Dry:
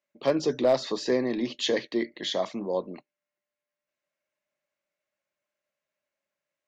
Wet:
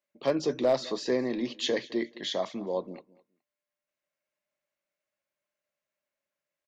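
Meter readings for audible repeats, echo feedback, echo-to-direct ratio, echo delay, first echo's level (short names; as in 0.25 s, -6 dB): 2, 20%, -21.0 dB, 0.21 s, -21.0 dB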